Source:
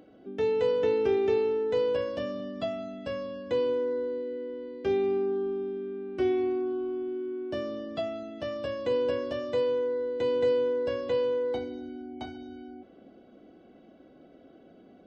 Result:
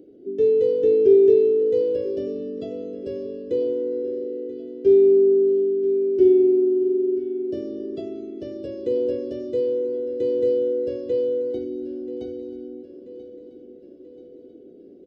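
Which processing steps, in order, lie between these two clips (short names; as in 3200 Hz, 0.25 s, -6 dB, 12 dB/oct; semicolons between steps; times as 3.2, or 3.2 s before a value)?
EQ curve 210 Hz 0 dB, 400 Hz +13 dB, 900 Hz -22 dB, 5200 Hz -4 dB; feedback echo 0.984 s, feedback 54%, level -15.5 dB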